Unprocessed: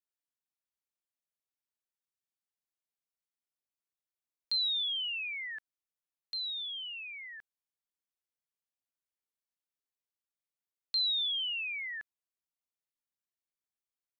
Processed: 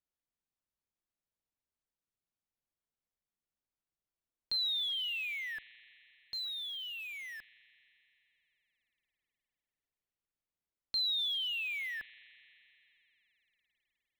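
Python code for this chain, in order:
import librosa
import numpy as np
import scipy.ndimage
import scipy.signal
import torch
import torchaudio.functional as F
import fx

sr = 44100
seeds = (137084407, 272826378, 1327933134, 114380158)

p1 = fx.tilt_eq(x, sr, slope=-2.5)
p2 = fx.spec_repair(p1, sr, seeds[0], start_s=4.56, length_s=0.78, low_hz=410.0, high_hz=2100.0, source='both')
p3 = fx.quant_dither(p2, sr, seeds[1], bits=8, dither='none')
p4 = p2 + (p3 * librosa.db_to_amplitude(-9.0))
y = fx.rev_spring(p4, sr, rt60_s=3.6, pass_ms=(40,), chirp_ms=25, drr_db=17.5)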